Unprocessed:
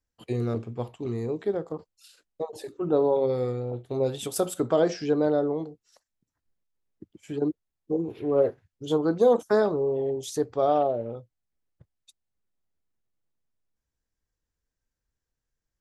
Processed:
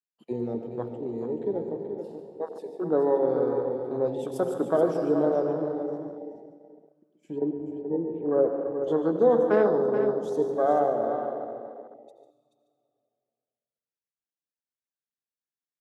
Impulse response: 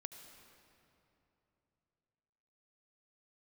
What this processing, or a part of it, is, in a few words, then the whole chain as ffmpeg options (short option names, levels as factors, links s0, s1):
PA in a hall: -filter_complex "[0:a]highpass=f=160:w=0.5412,highpass=f=160:w=1.3066,equalizer=f=2700:t=o:w=1.8:g=3,aecho=1:1:145:0.282[s0];[1:a]atrim=start_sample=2205[s1];[s0][s1]afir=irnorm=-1:irlink=0,afwtdn=0.0141,asettb=1/sr,asplit=3[s2][s3][s4];[s2]atrim=end=7.384[s5];[s3]atrim=start=7.38:end=8.84,asetpts=PTS-STARTPTS,afade=t=in:d=0.004:c=qsin,afade=t=out:st=1.456:d=0.004:c=qsin,lowpass=2500[s6];[s4]atrim=start=8.836[s7];[s5][s6]acrossfade=d=0.004:c1=hsin:c2=qsin[s8];[s8][s7]acrossfade=d=0.004:c1=qsin:c2=hsin,aecho=1:1:430:0.355,volume=1.58"